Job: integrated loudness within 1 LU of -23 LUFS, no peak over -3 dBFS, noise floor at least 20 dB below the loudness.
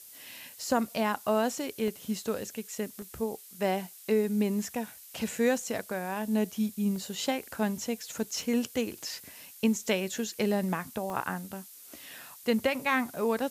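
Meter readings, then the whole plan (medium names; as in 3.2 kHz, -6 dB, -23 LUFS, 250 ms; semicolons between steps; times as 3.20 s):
dropouts 5; longest dropout 1.3 ms; noise floor -50 dBFS; noise floor target -51 dBFS; loudness -31.0 LUFS; peak level -13.5 dBFS; loudness target -23.0 LUFS
-> interpolate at 1.88/3.02/6.96/8.41/11.10 s, 1.3 ms; noise print and reduce 6 dB; trim +8 dB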